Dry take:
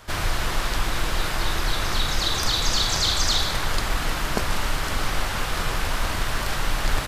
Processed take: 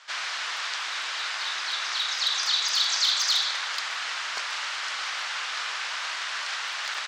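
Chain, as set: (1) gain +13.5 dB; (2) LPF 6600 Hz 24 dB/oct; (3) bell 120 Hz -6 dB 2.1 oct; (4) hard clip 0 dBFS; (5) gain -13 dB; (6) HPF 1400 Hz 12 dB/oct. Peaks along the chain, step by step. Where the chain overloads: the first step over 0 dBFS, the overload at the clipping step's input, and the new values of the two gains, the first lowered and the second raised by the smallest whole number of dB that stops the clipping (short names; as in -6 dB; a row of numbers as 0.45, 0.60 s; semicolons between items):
+5.5, +5.5, +5.5, 0.0, -13.0, -11.5 dBFS; step 1, 5.5 dB; step 1 +7.5 dB, step 5 -7 dB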